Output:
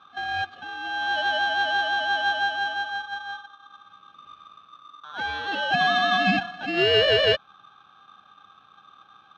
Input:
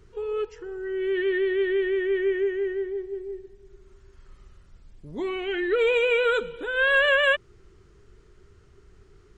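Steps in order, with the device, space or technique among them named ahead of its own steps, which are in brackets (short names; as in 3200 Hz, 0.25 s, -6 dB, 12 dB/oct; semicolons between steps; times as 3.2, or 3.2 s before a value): ring modulator pedal into a guitar cabinet (polarity switched at an audio rate 1200 Hz; speaker cabinet 92–3400 Hz, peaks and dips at 190 Hz +4 dB, 960 Hz -9 dB, 2000 Hz -10 dB); gain +3.5 dB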